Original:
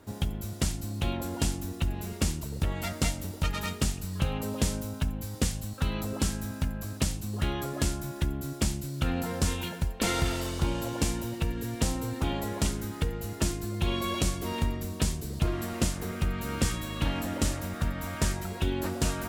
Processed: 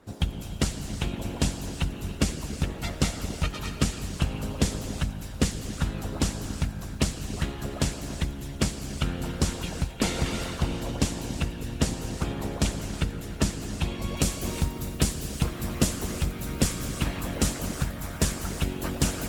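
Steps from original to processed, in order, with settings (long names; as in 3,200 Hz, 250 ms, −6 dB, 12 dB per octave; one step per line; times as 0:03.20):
high-shelf EQ 11,000 Hz −11.5 dB, from 0:14.17 +3 dB
reverb whose tail is shaped and stops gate 400 ms flat, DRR 3 dB
harmonic and percussive parts rebalanced harmonic −17 dB
level +5.5 dB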